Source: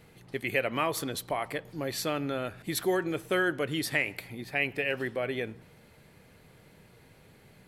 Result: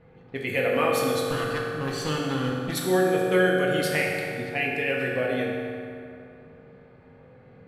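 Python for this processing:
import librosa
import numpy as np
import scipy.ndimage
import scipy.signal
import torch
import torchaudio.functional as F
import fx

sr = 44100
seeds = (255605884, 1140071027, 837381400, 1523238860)

y = fx.lower_of_two(x, sr, delay_ms=0.66, at=(1.25, 2.72))
y = fx.env_lowpass(y, sr, base_hz=1500.0, full_db=-28.0)
y = fx.rev_fdn(y, sr, rt60_s=2.7, lf_ratio=1.0, hf_ratio=0.6, size_ms=12.0, drr_db=-3.5)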